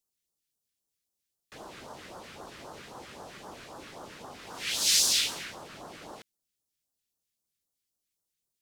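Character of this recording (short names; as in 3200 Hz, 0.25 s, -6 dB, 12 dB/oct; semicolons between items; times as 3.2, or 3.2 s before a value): phasing stages 2, 3.8 Hz, lowest notch 770–2200 Hz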